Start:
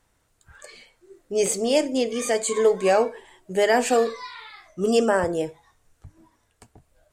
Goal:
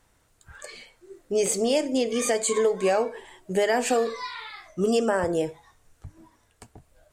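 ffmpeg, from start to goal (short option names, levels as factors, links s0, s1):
-af "acompressor=threshold=0.0631:ratio=3,volume=1.41"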